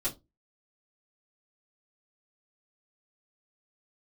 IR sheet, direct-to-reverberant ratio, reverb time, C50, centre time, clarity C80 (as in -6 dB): -11.0 dB, 0.20 s, 17.0 dB, 18 ms, 25.0 dB